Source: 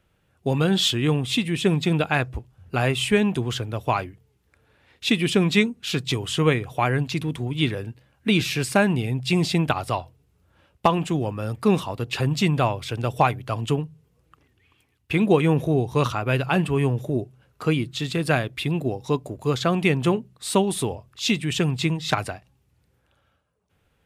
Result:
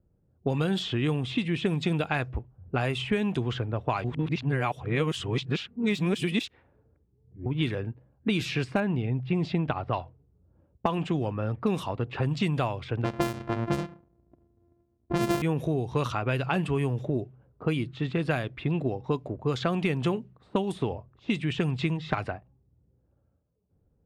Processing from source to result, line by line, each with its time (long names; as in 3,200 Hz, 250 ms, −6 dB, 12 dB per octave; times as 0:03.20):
0:04.04–0:07.46: reverse
0:08.80–0:09.93: head-to-tape spacing loss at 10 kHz 25 dB
0:13.04–0:15.42: samples sorted by size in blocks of 128 samples
whole clip: de-essing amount 65%; low-pass that shuts in the quiet parts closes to 410 Hz, open at −16.5 dBFS; downward compressor, threshold −23 dBFS